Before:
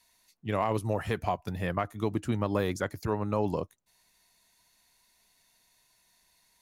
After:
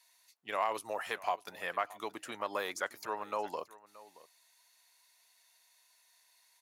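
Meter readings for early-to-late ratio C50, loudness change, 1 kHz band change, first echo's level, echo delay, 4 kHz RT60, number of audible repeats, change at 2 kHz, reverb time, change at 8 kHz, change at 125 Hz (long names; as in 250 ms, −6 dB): no reverb audible, −6.0 dB, −2.0 dB, −19.5 dB, 625 ms, no reverb audible, 1, 0.0 dB, no reverb audible, 0.0 dB, −31.0 dB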